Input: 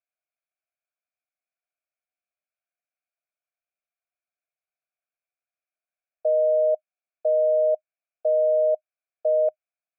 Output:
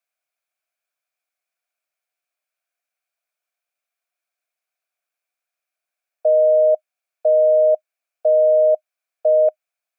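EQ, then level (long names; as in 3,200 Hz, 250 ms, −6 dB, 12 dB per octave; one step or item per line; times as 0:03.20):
Bessel high-pass filter 540 Hz
+8.5 dB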